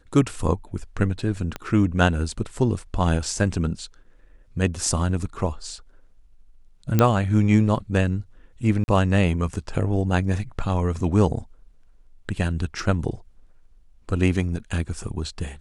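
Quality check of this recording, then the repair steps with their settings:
1.56 pop -15 dBFS
6.99 pop -5 dBFS
8.84–8.88 gap 41 ms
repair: de-click; interpolate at 8.84, 41 ms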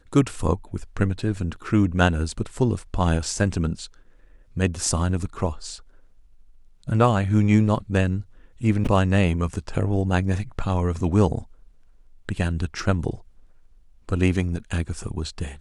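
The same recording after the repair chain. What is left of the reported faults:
1.56 pop

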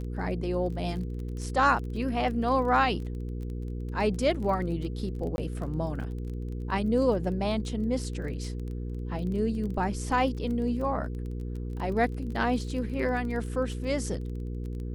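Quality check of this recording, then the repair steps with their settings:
crackle 20/s -36 dBFS
hum 60 Hz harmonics 8 -34 dBFS
5.36–5.38 gap 21 ms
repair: de-click; de-hum 60 Hz, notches 8; interpolate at 5.36, 21 ms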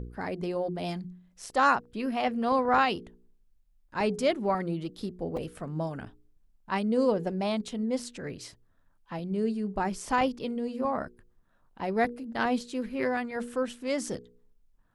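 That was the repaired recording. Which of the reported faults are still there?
none

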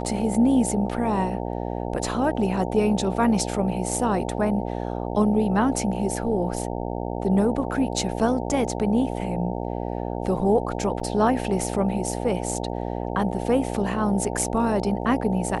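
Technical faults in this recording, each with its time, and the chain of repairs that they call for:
buzz 60 Hz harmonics 15 -29 dBFS
11–11.01 gap 5.3 ms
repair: de-hum 60 Hz, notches 15; interpolate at 11, 5.3 ms

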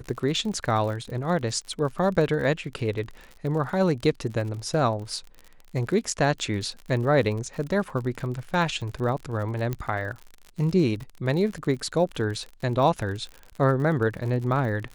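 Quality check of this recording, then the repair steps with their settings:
crackle 54/s -33 dBFS
9.73 pop -16 dBFS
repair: de-click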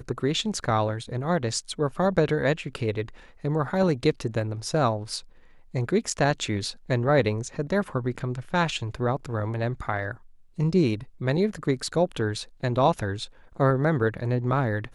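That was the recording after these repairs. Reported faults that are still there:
none

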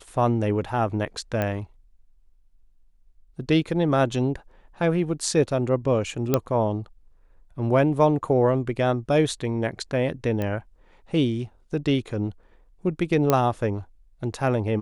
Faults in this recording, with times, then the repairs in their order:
1.42 pop -13 dBFS
6.34 pop -6 dBFS
10.42 pop -16 dBFS
13.3 pop -6 dBFS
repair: de-click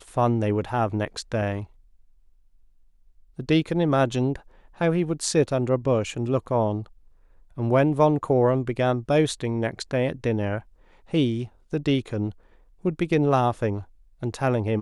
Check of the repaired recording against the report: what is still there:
6.34 pop

